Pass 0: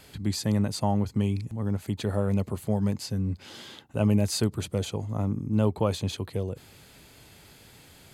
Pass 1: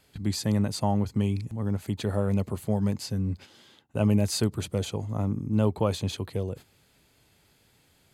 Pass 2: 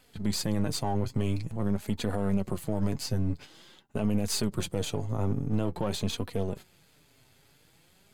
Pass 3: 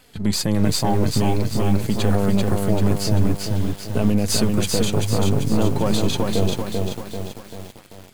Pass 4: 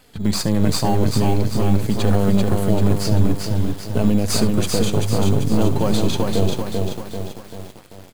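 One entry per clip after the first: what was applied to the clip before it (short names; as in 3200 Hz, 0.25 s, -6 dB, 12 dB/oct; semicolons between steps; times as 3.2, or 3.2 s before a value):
gate -41 dBFS, range -11 dB
half-wave gain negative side -7 dB; flange 0.48 Hz, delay 3.9 ms, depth 4 ms, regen +41%; limiter -25 dBFS, peak gain reduction 10.5 dB; gain +7.5 dB
lo-fi delay 0.39 s, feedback 55%, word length 8-bit, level -3 dB; gain +8.5 dB
echo 71 ms -15 dB; in parallel at -10 dB: sample-rate reducer 3600 Hz; on the sum: gain -1 dB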